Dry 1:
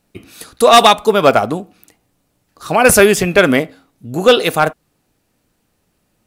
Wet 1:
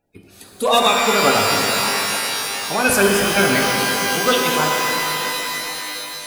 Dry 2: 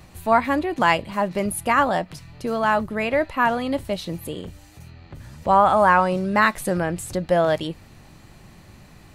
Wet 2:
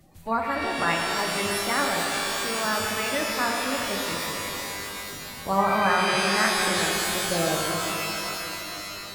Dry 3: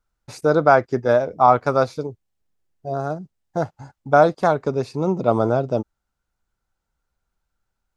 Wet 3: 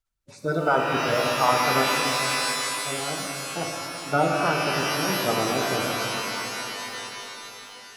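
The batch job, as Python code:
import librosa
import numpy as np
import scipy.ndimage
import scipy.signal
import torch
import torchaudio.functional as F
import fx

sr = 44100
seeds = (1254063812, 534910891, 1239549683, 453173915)

y = fx.spec_quant(x, sr, step_db=30)
y = fx.hum_notches(y, sr, base_hz=60, count=10)
y = fx.rev_shimmer(y, sr, seeds[0], rt60_s=3.7, semitones=12, shimmer_db=-2, drr_db=0.5)
y = F.gain(torch.from_numpy(y), -8.0).numpy()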